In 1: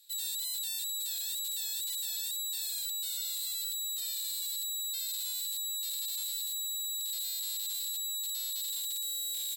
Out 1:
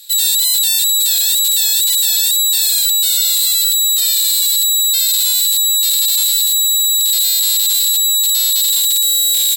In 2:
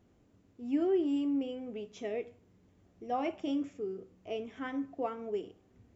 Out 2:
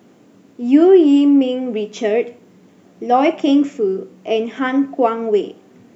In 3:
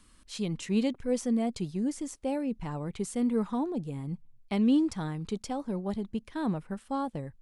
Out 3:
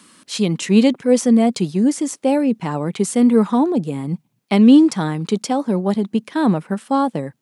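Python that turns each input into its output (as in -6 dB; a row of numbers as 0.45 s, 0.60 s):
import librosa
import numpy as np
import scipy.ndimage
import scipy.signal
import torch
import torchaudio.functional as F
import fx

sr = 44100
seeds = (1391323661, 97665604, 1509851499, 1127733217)

y = scipy.signal.sosfilt(scipy.signal.butter(4, 160.0, 'highpass', fs=sr, output='sos'), x)
y = librosa.util.normalize(y) * 10.0 ** (-2 / 20.0)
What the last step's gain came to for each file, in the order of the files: +22.0 dB, +19.5 dB, +14.5 dB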